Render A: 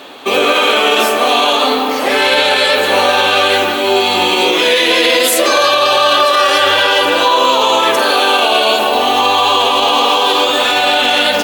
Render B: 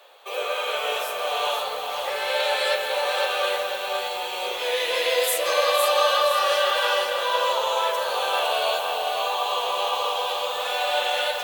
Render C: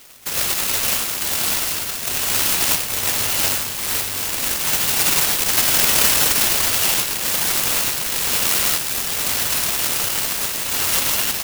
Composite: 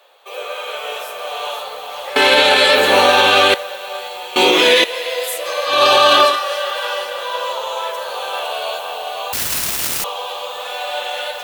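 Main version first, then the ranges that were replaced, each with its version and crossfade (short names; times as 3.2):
B
2.16–3.54 from A
4.36–4.84 from A
5.73–6.33 from A, crossfade 0.16 s
9.33–10.04 from C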